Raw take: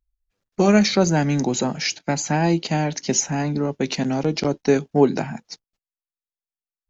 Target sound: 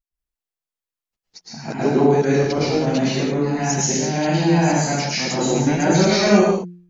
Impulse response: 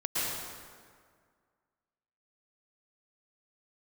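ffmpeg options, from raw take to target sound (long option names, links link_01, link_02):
-filter_complex "[0:a]areverse,bandreject=frequency=176.4:width_type=h:width=4,bandreject=frequency=352.8:width_type=h:width=4[link_01];[1:a]atrim=start_sample=2205,afade=type=out:start_time=0.39:duration=0.01,atrim=end_sample=17640[link_02];[link_01][link_02]afir=irnorm=-1:irlink=0,volume=-4.5dB"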